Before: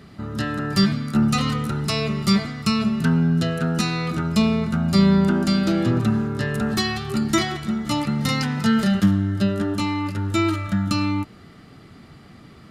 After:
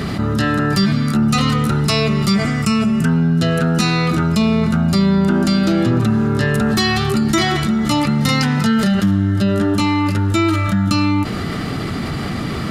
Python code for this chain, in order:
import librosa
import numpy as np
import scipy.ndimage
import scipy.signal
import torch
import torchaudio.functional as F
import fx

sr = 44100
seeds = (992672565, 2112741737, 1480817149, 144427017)

y = fx.graphic_eq_31(x, sr, hz=(1000, 4000, 8000), db=(-4, -12, 6), at=(2.34, 3.09))
y = fx.env_flatten(y, sr, amount_pct=70)